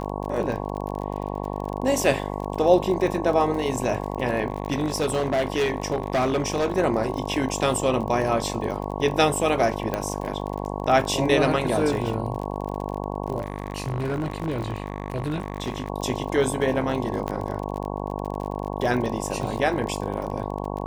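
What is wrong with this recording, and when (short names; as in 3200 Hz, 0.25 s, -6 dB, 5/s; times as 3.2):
buzz 50 Hz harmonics 22 -30 dBFS
crackle 35/s -30 dBFS
4.5–6.78 clipped -18.5 dBFS
9.94 pop -12 dBFS
13.38–15.9 clipped -22.5 dBFS
17.28 pop -15 dBFS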